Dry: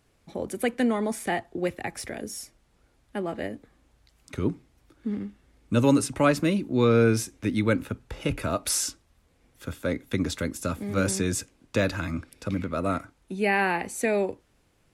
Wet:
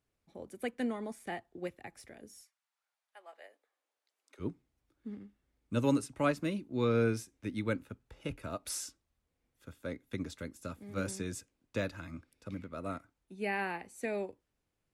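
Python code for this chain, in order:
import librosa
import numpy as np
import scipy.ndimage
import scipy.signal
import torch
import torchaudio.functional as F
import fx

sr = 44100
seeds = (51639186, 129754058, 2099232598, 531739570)

y = fx.highpass(x, sr, hz=fx.line((2.41, 1000.0), (4.39, 350.0)), slope=24, at=(2.41, 4.39), fade=0.02)
y = fx.upward_expand(y, sr, threshold_db=-37.0, expansion=1.5)
y = y * 10.0 ** (-8.0 / 20.0)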